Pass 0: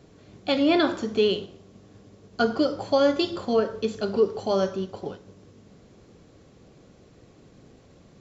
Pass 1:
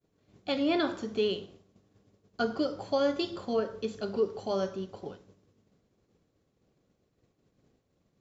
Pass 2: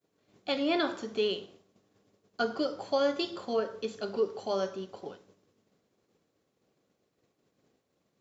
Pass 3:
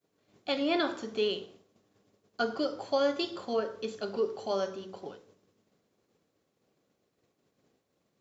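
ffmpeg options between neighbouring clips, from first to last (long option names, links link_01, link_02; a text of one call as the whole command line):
ffmpeg -i in.wav -af "agate=range=-33dB:threshold=-43dB:ratio=3:detection=peak,volume=-7dB" out.wav
ffmpeg -i in.wav -af "highpass=frequency=350:poles=1,volume=1.5dB" out.wav
ffmpeg -i in.wav -af "bandreject=frequency=63.02:width_type=h:width=4,bandreject=frequency=126.04:width_type=h:width=4,bandreject=frequency=189.06:width_type=h:width=4,bandreject=frequency=252.08:width_type=h:width=4,bandreject=frequency=315.1:width_type=h:width=4,bandreject=frequency=378.12:width_type=h:width=4,bandreject=frequency=441.14:width_type=h:width=4,bandreject=frequency=504.16:width_type=h:width=4" out.wav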